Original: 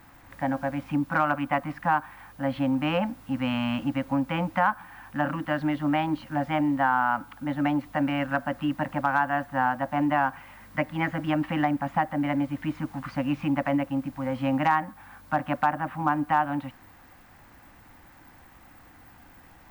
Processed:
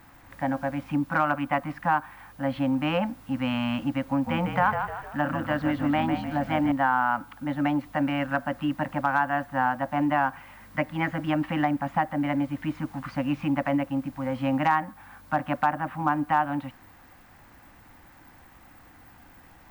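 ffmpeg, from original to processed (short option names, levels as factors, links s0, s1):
-filter_complex "[0:a]asettb=1/sr,asplit=3[s0][s1][s2];[s0]atrim=end=4.074[s3];[s1]atrim=start=4.07:end=6.72,asetpts=PTS-STARTPTS,afade=t=in:d=0.004:c=qsin,afade=t=out:st=2.646:d=0.004:c=qsin,asplit=6[s4][s5][s6][s7][s8][s9];[s5]adelay=152,afreqshift=-41,volume=0.447[s10];[s6]adelay=304,afreqshift=-82,volume=0.193[s11];[s7]adelay=456,afreqshift=-123,volume=0.0822[s12];[s8]adelay=608,afreqshift=-164,volume=0.0355[s13];[s9]adelay=760,afreqshift=-205,volume=0.0153[s14];[s4][s10][s11][s12][s13][s14]amix=inputs=6:normalize=0,atrim=end_sample=116865[s15];[s2]atrim=start=6.716[s16];[s3][s15]acrossfade=d=0.004:c1=hsin:c2=qsin[s17];[s17][s16]acrossfade=d=0.004:c1=qsin:c2=hsin"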